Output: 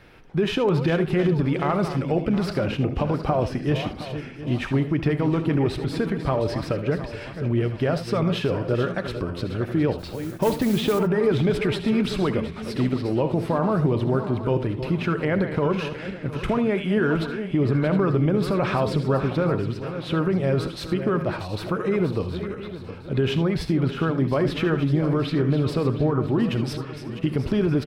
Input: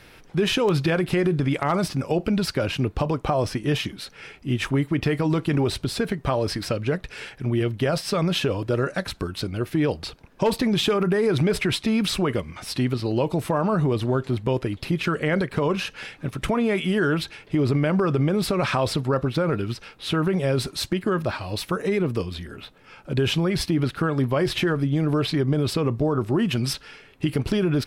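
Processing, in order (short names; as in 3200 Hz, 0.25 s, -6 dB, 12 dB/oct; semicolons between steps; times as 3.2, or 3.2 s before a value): regenerating reverse delay 0.358 s, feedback 60%, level -10 dB; bell 11000 Hz -13 dB 2.5 oct; 9.98–10.99 modulation noise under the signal 19 dB; on a send: early reflections 67 ms -16 dB, 79 ms -14.5 dB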